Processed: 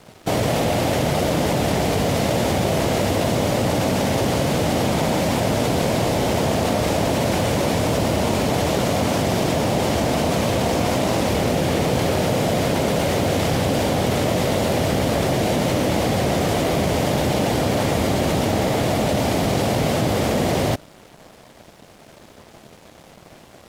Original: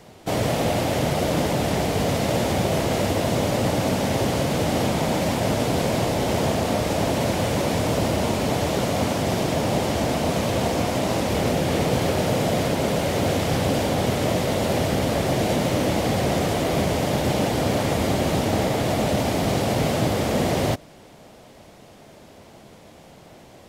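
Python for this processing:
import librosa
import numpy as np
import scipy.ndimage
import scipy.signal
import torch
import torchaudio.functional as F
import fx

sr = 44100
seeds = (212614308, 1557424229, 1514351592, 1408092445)

p1 = fx.over_compress(x, sr, threshold_db=-26.0, ratio=-1.0)
p2 = x + (p1 * 10.0 ** (0.0 / 20.0))
p3 = np.sign(p2) * np.maximum(np.abs(p2) - 10.0 ** (-41.5 / 20.0), 0.0)
y = p3 * 10.0 ** (-1.5 / 20.0)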